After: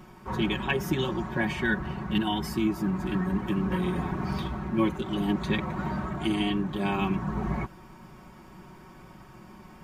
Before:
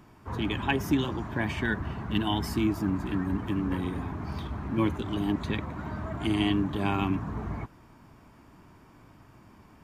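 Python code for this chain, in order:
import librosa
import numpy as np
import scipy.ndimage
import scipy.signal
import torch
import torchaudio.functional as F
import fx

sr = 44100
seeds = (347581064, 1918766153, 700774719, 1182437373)

y = x + 0.82 * np.pad(x, (int(5.4 * sr / 1000.0), 0))[:len(x)]
y = fx.rider(y, sr, range_db=4, speed_s=0.5)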